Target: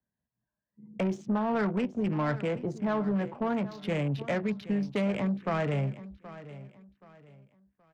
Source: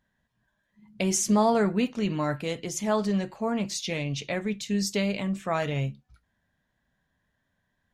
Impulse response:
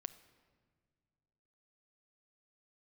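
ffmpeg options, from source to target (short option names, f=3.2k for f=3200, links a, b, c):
-filter_complex "[0:a]highpass=60,atempo=1,acrossover=split=330|1200[a][b][c];[b]alimiter=level_in=1dB:limit=-24dB:level=0:latency=1,volume=-1dB[d];[a][d][c]amix=inputs=3:normalize=0,acrossover=split=150|570|1700[e][f][g][h];[e]acompressor=threshold=-39dB:ratio=4[i];[f]acompressor=threshold=-36dB:ratio=4[j];[g]acompressor=threshold=-34dB:ratio=4[k];[h]acompressor=threshold=-37dB:ratio=4[l];[i][j][k][l]amix=inputs=4:normalize=0,asplit=2[m][n];[n]aeval=exprs='0.168*sin(PI/2*3.55*val(0)/0.168)':c=same,volume=-12dB[o];[m][o]amix=inputs=2:normalize=0,afwtdn=0.0158,adynamicsmooth=sensitivity=1.5:basefreq=1.2k,aecho=1:1:775|1550|2325:0.158|0.0507|0.0162,volume=-2dB"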